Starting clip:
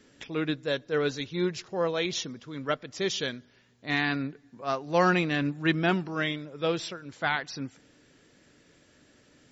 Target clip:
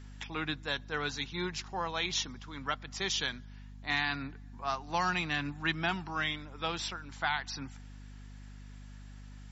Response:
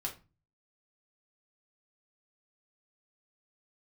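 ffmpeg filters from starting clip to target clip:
-filter_complex "[0:a]lowshelf=f=670:t=q:w=3:g=-6.5,acrossover=split=160|3000[a][b][c];[b]acompressor=threshold=-32dB:ratio=2.5[d];[a][d][c]amix=inputs=3:normalize=0,aeval=exprs='val(0)+0.00447*(sin(2*PI*50*n/s)+sin(2*PI*2*50*n/s)/2+sin(2*PI*3*50*n/s)/3+sin(2*PI*4*50*n/s)/4+sin(2*PI*5*50*n/s)/5)':c=same"

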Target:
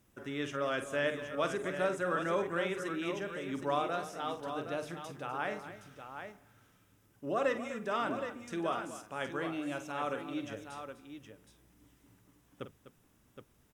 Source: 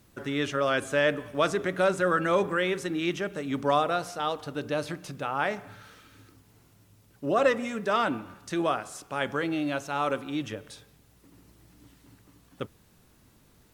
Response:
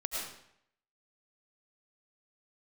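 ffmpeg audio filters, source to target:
-filter_complex "[0:a]equalizer=f=4.3k:w=6:g=-10,bandreject=f=50:t=h:w=6,bandreject=f=100:t=h:w=6,bandreject=f=150:t=h:w=6,asplit=2[a][b];[b]aecho=0:1:48|250|768:0.282|0.224|0.376[c];[a][c]amix=inputs=2:normalize=0,volume=-8.5dB"

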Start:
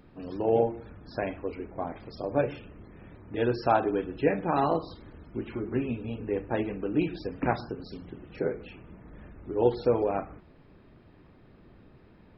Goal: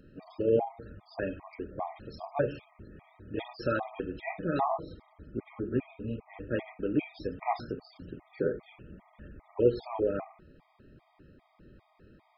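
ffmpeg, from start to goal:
-filter_complex "[0:a]asettb=1/sr,asplit=3[a][b][c];[a]atrim=end=4.614[d];[b]atrim=start=4.61:end=6.34,asetpts=PTS-STARTPTS,afade=t=in:d=0.004:c=qsin,afade=t=out:st=1.726:d=0.004:c=qsin,lowpass=f=2k:p=1[e];[c]atrim=start=6.336[f];[d][e]acrossfade=d=0.004:c1=hsin:c2=qsin[g];[g][f]acrossfade=d=0.004:c1=qsin:c2=hsin,afftfilt=real='re*gt(sin(2*PI*2.5*pts/sr)*(1-2*mod(floor(b*sr/1024/630),2)),0)':imag='im*gt(sin(2*PI*2.5*pts/sr)*(1-2*mod(floor(b*sr/1024/630),2)),0)':win_size=1024:overlap=0.75"

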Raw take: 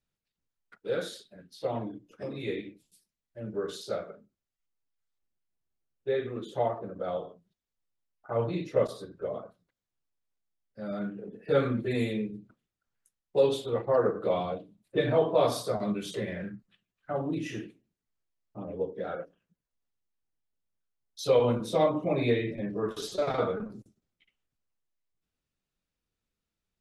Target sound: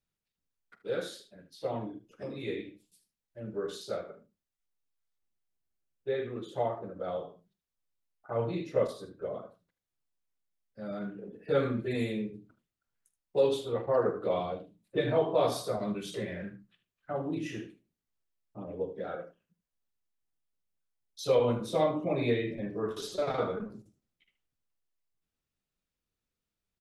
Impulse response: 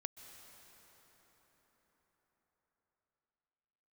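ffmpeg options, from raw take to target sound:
-af "aecho=1:1:46|76:0.15|0.211,volume=-2.5dB"

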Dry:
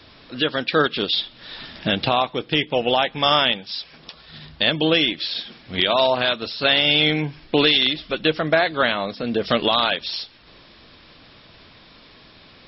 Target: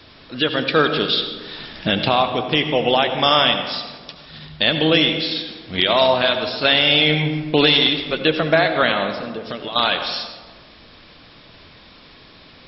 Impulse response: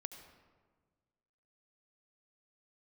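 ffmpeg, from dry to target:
-filter_complex "[0:a]asettb=1/sr,asplit=3[a][b][c];[a]atrim=end=9.174[d];[b]atrim=start=9.17:end=9.76,asetpts=PTS-STARTPTS,afade=t=in:d=0.004:c=qsin,afade=t=out:st=0.586:d=0.004:c=qsin,acompressor=threshold=-33dB:ratio=3[e];[c]atrim=start=9.756[f];[d][e]acrossfade=d=0.004:c1=hsin:c2=qsin[g];[g][f]acrossfade=d=0.004:c1=qsin:c2=hsin[h];[1:a]atrim=start_sample=2205[i];[h][i]afir=irnorm=-1:irlink=0,volume=6dB"

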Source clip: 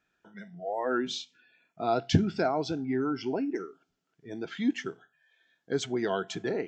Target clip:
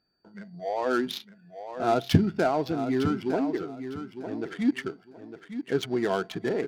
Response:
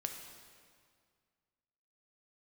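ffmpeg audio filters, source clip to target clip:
-filter_complex "[0:a]aeval=exprs='val(0)+0.00282*sin(2*PI*4600*n/s)':c=same,adynamicsmooth=sensitivity=8:basefreq=880,asplit=2[a][b];[b]aecho=0:1:906|1812|2718:0.316|0.0727|0.0167[c];[a][c]amix=inputs=2:normalize=0,volume=3dB"

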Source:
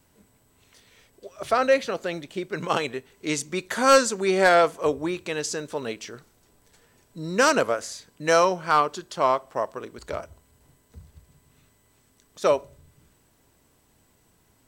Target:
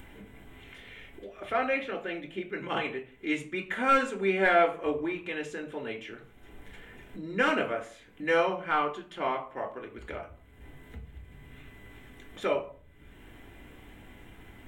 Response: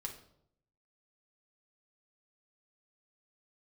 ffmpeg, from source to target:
-filter_complex "[0:a]highshelf=f=3.7k:t=q:w=3:g=-10.5,acompressor=mode=upward:threshold=-29dB:ratio=2.5[a];[1:a]atrim=start_sample=2205,asetrate=79380,aresample=44100[b];[a][b]afir=irnorm=-1:irlink=0"

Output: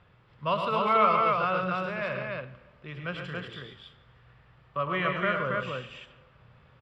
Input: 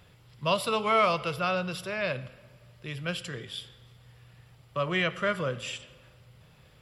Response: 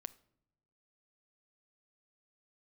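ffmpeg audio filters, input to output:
-af "lowpass=2.7k,equalizer=f=1.2k:t=o:w=0.93:g=6,aecho=1:1:105|137|279.9:0.447|0.355|0.708,volume=-3.5dB"

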